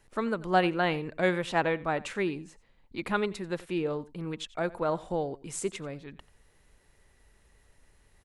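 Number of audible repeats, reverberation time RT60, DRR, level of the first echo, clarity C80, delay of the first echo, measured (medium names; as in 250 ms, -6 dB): 1, no reverb, no reverb, -20.0 dB, no reverb, 89 ms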